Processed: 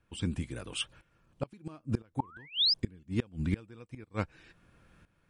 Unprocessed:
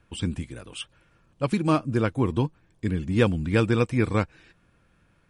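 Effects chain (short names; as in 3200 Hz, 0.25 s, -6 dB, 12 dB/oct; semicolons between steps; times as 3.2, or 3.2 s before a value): tremolo saw up 0.99 Hz, depth 80%; painted sound rise, 2.19–2.74, 840–5300 Hz -28 dBFS; flipped gate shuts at -20 dBFS, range -29 dB; gain +3 dB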